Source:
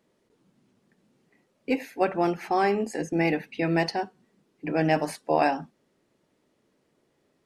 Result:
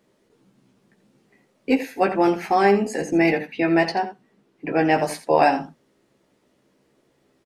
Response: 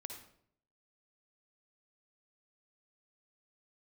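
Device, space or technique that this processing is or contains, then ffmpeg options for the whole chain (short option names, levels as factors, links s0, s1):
slapback doubling: -filter_complex "[0:a]asettb=1/sr,asplit=3[s0][s1][s2];[s0]atrim=end=3.324[s3];[s1]atrim=start=3.32:end=4.98,asetpts=PTS-STARTPTS,afade=t=in:d=0.004:c=qsin,afade=t=out:st=1.656:d=0.004:c=qsin,bass=f=250:g=-3,treble=f=4000:g=-6[s4];[s2]atrim=start=4.976[s5];[s3][s4]acrossfade=d=0.004:c1=hsin:c2=qsin[s6];[s6][s5]acrossfade=d=0.004:c1=qsin:c2=hsin,asplit=3[s7][s8][s9];[s8]adelay=15,volume=0.531[s10];[s9]adelay=85,volume=0.251[s11];[s7][s10][s11]amix=inputs=3:normalize=0,volume=1.68"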